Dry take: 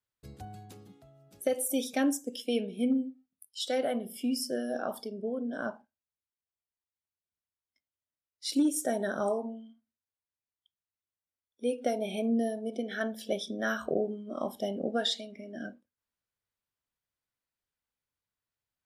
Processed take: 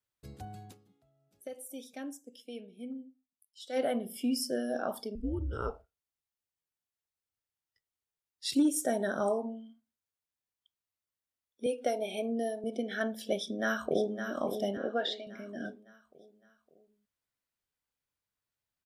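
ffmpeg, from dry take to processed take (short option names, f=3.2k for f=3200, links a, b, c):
-filter_complex "[0:a]asettb=1/sr,asplit=3[a][b][c];[a]atrim=end=5.154[d];[b]atrim=start=5.15:end=8.55,asetpts=PTS-STARTPTS,afade=t=in:d=0.004:c=qsin,afade=t=out:st=3.396:d=0.004:c=qsin,afreqshift=-170[e];[c]atrim=start=8.546[f];[d][e]acrossfade=d=0.004:c1=hsin:c2=qsin[g];[g][f]acrossfade=d=0.004:c1=qsin:c2=hsin,asettb=1/sr,asplit=3[h][i][j];[h]atrim=end=11.664[k];[i]atrim=start=11.66:end=12.64,asetpts=PTS-STARTPTS,afade=t=in:d=0.004:c=qsin,afade=t=out:st=0.976:d=0.004:c=qsin,highpass=320[l];[j]atrim=start=12.636[m];[k][l]acrossfade=d=0.004:c1=hsin:c2=qsin[n];[n][m]acrossfade=d=0.004:c1=qsin:c2=hsin,asplit=2[o][p];[p]afade=t=in:st=13.35:d=0.01,afade=t=out:st=14.25:d=0.01,aecho=0:1:560|1120|1680|2240|2800:0.398107|0.179148|0.0806167|0.0362775|0.0163249[q];[o][q]amix=inputs=2:normalize=0,asettb=1/sr,asplit=3[r][s][t];[r]atrim=end=14.774[u];[s]atrim=start=14.77:end=15.27,asetpts=PTS-STARTPTS,afade=t=in:d=0.004:c=qsin,afade=t=out:st=0.496:d=0.004:c=qsin,highpass=310,lowpass=3k[v];[t]atrim=start=15.266[w];[u][v]acrossfade=d=0.004:c1=hsin:c2=qsin[x];[x][w]acrossfade=d=0.004:c1=qsin:c2=hsin,asplit=3[y][z][aa];[y]atrim=end=1.07,asetpts=PTS-STARTPTS,afade=t=out:st=0.7:d=0.37:c=exp:silence=0.199526[ab];[z]atrim=start=1.07:end=3.4,asetpts=PTS-STARTPTS,volume=-14dB[ac];[aa]atrim=start=3.4,asetpts=PTS-STARTPTS,afade=t=in:d=0.37:c=exp:silence=0.199526[ad];[ab][ac][ad]concat=n=3:v=0:a=1"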